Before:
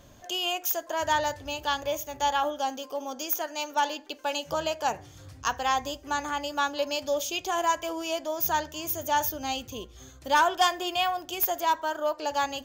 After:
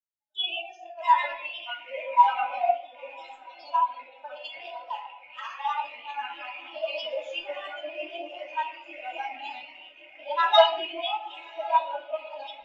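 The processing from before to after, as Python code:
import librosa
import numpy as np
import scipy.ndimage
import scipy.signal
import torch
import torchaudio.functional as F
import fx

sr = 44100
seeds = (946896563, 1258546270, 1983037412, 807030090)

y = fx.rattle_buzz(x, sr, strikes_db=-46.0, level_db=-20.0)
y = scipy.signal.sosfilt(scipy.signal.butter(4, 5300.0, 'lowpass', fs=sr, output='sos'), y)
y = fx.tilt_eq(y, sr, slope=3.0)
y = fx.notch(y, sr, hz=1000.0, q=12.0)
y = fx.granulator(y, sr, seeds[0], grain_ms=100.0, per_s=20.0, spray_ms=100.0, spread_st=3)
y = fx.mod_noise(y, sr, seeds[1], snr_db=12)
y = fx.echo_diffused(y, sr, ms=1100, feedback_pct=68, wet_db=-8.5)
y = fx.room_shoebox(y, sr, seeds[2], volume_m3=1100.0, walls='mixed', distance_m=2.7)
y = fx.spectral_expand(y, sr, expansion=2.5)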